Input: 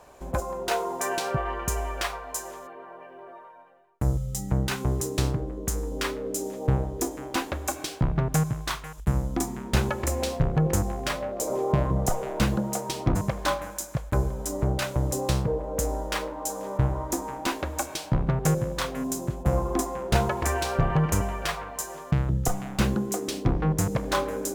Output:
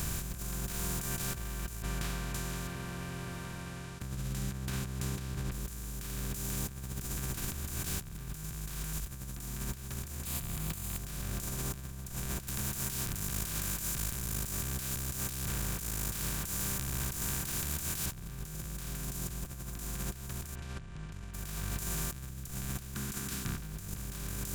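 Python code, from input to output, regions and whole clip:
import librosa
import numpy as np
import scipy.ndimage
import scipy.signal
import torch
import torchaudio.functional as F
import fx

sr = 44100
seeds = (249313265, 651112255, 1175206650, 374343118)

y = fx.chain(x, sr, fx.bandpass_edges(low_hz=150.0, high_hz=5400.0),
    fx.air_absorb(metres=410.0), at=(1.82, 5.52))
y = fx.chain(y, sr, fx.tilt_eq(slope=4.5),
    fx.fixed_phaser(hz=1600.0, stages=6), at=(10.25, 10.98))
y = fx.chain(y, sr, fx.tube_stage(drive_db=29.0, bias=0.65),
    fx.tilt_eq(slope=4.5), at=(12.47, 18.06))
y = fx.chain(y, sr, fx.steep_lowpass(hz=2900.0, slope=36),
    fx.env_flatten(amount_pct=100), at=(20.55, 21.34))
y = fx.chain(y, sr, fx.tilt_eq(slope=3.5),
    fx.over_compress(threshold_db=-28.0, ratio=-0.5),
    fx.double_bandpass(hz=580.0, octaves=2.6), at=(22.94, 23.58))
y = fx.bin_compress(y, sr, power=0.2)
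y = fx.tone_stack(y, sr, knobs='6-0-2')
y = fx.over_compress(y, sr, threshold_db=-34.0, ratio=-0.5)
y = F.gain(torch.from_numpy(y), -2.5).numpy()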